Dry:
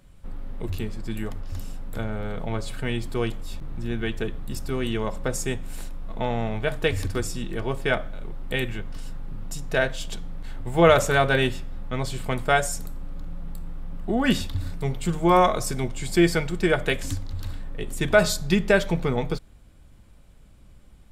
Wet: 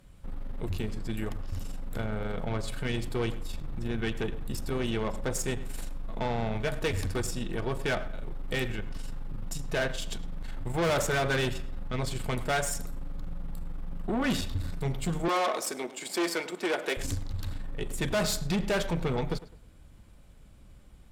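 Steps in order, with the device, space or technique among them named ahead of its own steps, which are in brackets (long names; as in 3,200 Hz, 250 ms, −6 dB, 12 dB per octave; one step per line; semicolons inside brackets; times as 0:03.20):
rockabilly slapback (tube saturation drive 24 dB, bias 0.4; tape delay 105 ms, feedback 32%, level −14.5 dB, low-pass 3,000 Hz)
0:15.28–0:16.97: high-pass filter 280 Hz 24 dB per octave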